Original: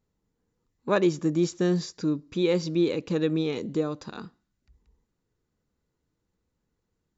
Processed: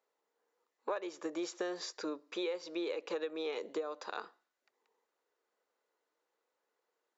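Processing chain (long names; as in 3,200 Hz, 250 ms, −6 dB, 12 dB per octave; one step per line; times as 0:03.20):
high-pass filter 490 Hz 24 dB per octave
high-shelf EQ 3,700 Hz −11 dB
downward compressor 20 to 1, threshold −38 dBFS, peak gain reduction 18.5 dB
level +4.5 dB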